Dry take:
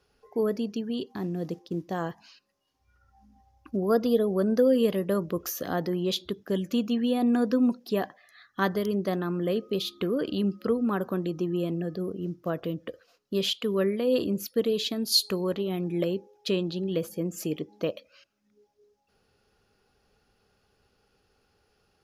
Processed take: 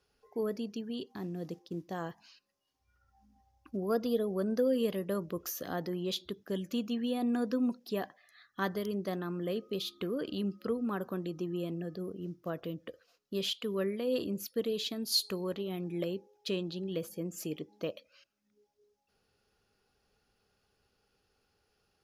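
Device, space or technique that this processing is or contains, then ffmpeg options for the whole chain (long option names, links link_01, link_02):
exciter from parts: -filter_complex "[0:a]asplit=2[link_01][link_02];[link_02]highpass=frequency=2600:poles=1,asoftclip=type=tanh:threshold=-31dB,volume=-6dB[link_03];[link_01][link_03]amix=inputs=2:normalize=0,volume=-7.5dB"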